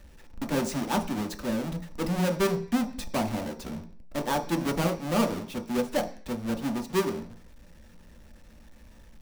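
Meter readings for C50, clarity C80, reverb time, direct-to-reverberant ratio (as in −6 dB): 12.5 dB, 17.0 dB, 0.45 s, 3.5 dB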